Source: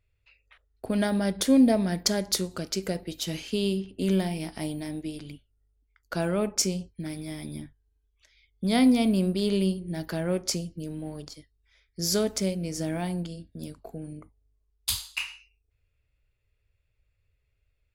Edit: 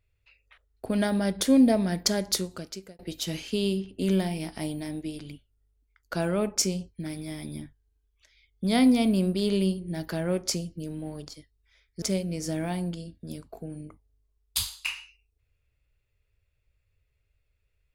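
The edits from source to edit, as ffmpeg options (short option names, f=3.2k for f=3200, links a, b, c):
-filter_complex "[0:a]asplit=3[a][b][c];[a]atrim=end=2.99,asetpts=PTS-STARTPTS,afade=t=out:st=2.33:d=0.66[d];[b]atrim=start=2.99:end=12.022,asetpts=PTS-STARTPTS,afade=t=in:d=0.004:c=hsin[e];[c]atrim=start=12.338[f];[d][e]concat=n=2:v=0:a=1[g];[g][f]acrossfade=d=0.004:c1=hsin:c2=hsin"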